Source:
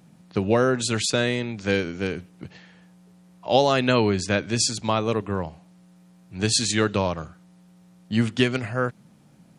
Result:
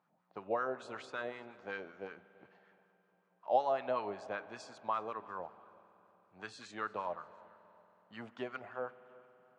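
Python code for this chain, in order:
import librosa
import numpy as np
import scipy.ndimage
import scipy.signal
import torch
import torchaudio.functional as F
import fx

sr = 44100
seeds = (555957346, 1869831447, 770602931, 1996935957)

y = fx.wah_lfo(x, sr, hz=5.3, low_hz=650.0, high_hz=1300.0, q=3.0)
y = fx.echo_feedback(y, sr, ms=345, feedback_pct=36, wet_db=-22.5)
y = fx.rev_spring(y, sr, rt60_s=3.8, pass_ms=(46,), chirp_ms=65, drr_db=16.5)
y = F.gain(torch.from_numpy(y), -6.5).numpy()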